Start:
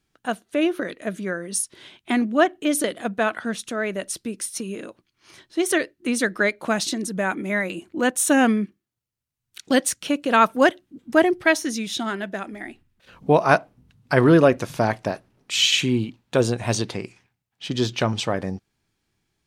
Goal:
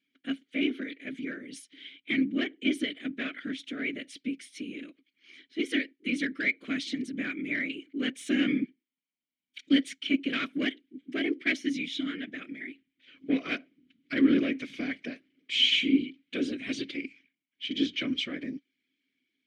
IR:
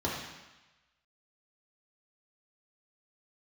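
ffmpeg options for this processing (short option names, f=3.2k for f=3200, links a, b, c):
-filter_complex "[0:a]afftfilt=real='hypot(re,im)*cos(2*PI*random(0))':imag='hypot(re,im)*sin(2*PI*random(1))':win_size=512:overlap=0.75,asplit=2[a][b];[b]highpass=f=720:p=1,volume=16dB,asoftclip=type=tanh:threshold=-8.5dB[c];[a][c]amix=inputs=2:normalize=0,lowpass=f=6.9k:p=1,volume=-6dB,asplit=3[d][e][f];[d]bandpass=f=270:t=q:w=8,volume=0dB[g];[e]bandpass=f=2.29k:t=q:w=8,volume=-6dB[h];[f]bandpass=f=3.01k:t=q:w=8,volume=-9dB[i];[g][h][i]amix=inputs=3:normalize=0,volume=5.5dB"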